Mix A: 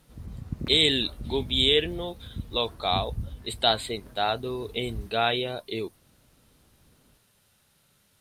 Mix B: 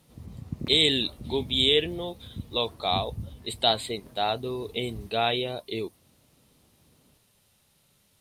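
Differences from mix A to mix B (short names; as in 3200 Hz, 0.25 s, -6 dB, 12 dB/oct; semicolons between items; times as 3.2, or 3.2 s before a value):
background: add HPF 80 Hz; master: add bell 1500 Hz -6.5 dB 0.5 oct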